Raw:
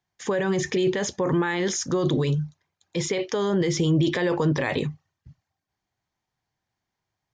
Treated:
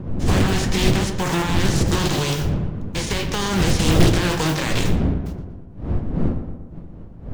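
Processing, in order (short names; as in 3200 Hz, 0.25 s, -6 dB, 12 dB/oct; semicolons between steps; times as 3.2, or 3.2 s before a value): spectral whitening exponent 0.3; wind noise 170 Hz -23 dBFS; darkening echo 0.117 s, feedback 58%, low-pass 2500 Hz, level -8.5 dB; reverb, pre-delay 6 ms, DRR 10.5 dB; Doppler distortion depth 0.88 ms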